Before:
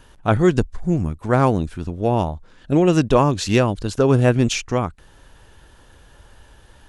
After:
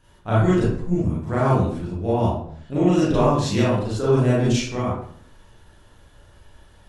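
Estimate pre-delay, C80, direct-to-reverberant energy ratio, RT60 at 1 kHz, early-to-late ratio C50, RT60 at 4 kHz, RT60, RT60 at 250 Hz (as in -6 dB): 30 ms, 4.5 dB, -9.0 dB, 0.55 s, -0.5 dB, 0.40 s, 0.60 s, 0.75 s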